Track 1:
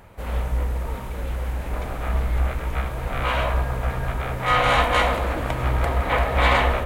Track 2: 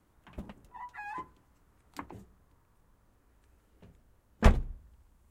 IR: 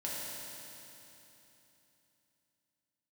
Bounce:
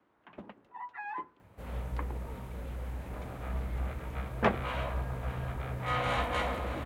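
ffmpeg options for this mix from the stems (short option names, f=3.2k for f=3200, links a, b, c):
-filter_complex "[0:a]lowshelf=f=300:g=8,adelay=1400,volume=-13.5dB,asplit=2[a][b];[b]volume=-13.5dB[c];[1:a]acrossover=split=230 3500:gain=0.2 1 0.0631[d][e][f];[d][e][f]amix=inputs=3:normalize=0,volume=2dB[g];[c]aecho=0:1:623:1[h];[a][g][h]amix=inputs=3:normalize=0,highpass=86"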